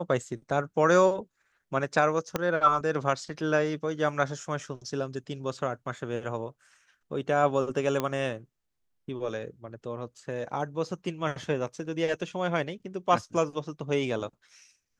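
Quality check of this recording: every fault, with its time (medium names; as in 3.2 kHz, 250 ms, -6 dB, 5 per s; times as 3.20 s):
2.36 s: pop -12 dBFS
8.00 s: pop -14 dBFS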